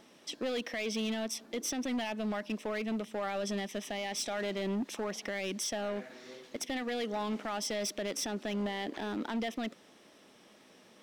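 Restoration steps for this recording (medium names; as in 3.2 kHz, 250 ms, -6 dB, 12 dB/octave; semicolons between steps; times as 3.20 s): clip repair -29.5 dBFS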